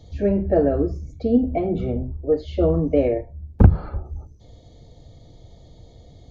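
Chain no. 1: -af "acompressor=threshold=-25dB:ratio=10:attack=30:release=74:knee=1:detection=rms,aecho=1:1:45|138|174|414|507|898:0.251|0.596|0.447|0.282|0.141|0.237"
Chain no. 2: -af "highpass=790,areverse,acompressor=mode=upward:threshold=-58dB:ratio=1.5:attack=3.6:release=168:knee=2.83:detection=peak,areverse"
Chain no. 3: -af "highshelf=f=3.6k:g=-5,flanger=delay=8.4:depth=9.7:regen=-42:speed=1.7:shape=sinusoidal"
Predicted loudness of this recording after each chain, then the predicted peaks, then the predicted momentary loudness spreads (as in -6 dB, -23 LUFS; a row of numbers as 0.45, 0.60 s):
-27.0, -33.0, -25.0 LUFS; -9.5, -13.5, -4.0 dBFS; 21, 13, 16 LU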